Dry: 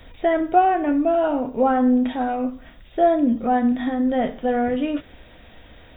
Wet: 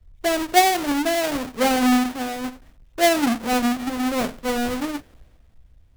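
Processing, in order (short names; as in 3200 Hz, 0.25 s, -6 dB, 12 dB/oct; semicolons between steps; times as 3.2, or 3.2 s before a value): half-waves squared off; three-band expander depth 70%; gain -5.5 dB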